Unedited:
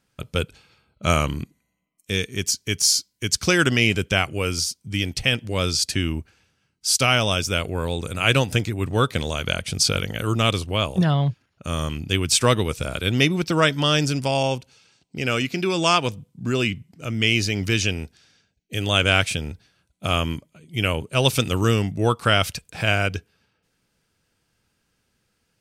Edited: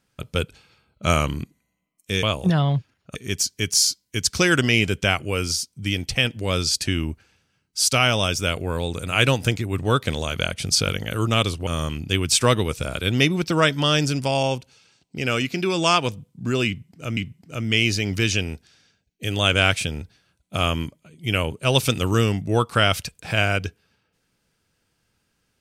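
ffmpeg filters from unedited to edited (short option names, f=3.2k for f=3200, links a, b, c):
-filter_complex "[0:a]asplit=5[a][b][c][d][e];[a]atrim=end=2.232[f];[b]atrim=start=10.748:end=11.672[g];[c]atrim=start=2.228:end=10.752[h];[d]atrim=start=11.668:end=17.172[i];[e]atrim=start=16.668[j];[f][g]acrossfade=d=0.004:c1=hsin:c2=hsin[k];[k][h]acrossfade=d=0.004:c1=hsin:c2=hsin[l];[l][i]acrossfade=d=0.004:c1=hsin:c2=hsin[m];[m][j]acrossfade=d=0.004:c1=hsin:c2=hsin"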